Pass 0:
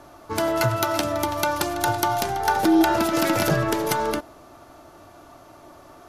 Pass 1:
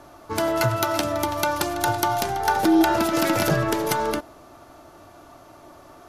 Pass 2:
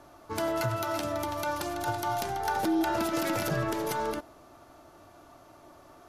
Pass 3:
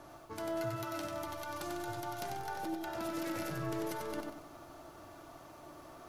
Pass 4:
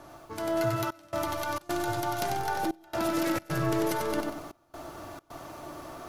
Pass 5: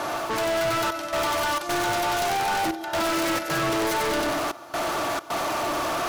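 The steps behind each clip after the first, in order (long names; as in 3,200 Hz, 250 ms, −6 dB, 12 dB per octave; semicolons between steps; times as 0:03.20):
no processing that can be heard
brickwall limiter −13 dBFS, peak gain reduction 7.5 dB; level −6.5 dB
reversed playback; downward compressor 6 to 1, threshold −39 dBFS, peak gain reduction 14 dB; reversed playback; rectangular room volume 3,700 cubic metres, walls furnished, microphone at 0.64 metres; feedback echo at a low word length 94 ms, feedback 35%, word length 11 bits, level −4.5 dB
gate pattern "xxxxxxxx..xxxx.x" 133 BPM −24 dB; automatic gain control gain up to 6 dB; level +4 dB
mid-hump overdrive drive 36 dB, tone 6,300 Hz, clips at −16 dBFS; level −2.5 dB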